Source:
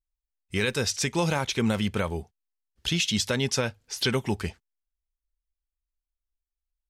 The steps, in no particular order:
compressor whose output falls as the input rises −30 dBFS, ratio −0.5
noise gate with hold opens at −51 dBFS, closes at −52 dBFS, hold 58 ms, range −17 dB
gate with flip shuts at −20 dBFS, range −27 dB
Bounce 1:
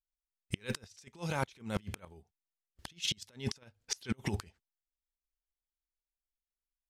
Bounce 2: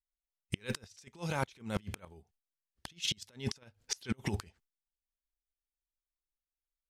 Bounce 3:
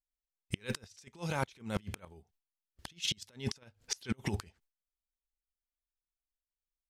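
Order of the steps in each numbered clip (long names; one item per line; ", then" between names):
compressor whose output falls as the input rises, then gate with flip, then noise gate with hold
noise gate with hold, then compressor whose output falls as the input rises, then gate with flip
compressor whose output falls as the input rises, then noise gate with hold, then gate with flip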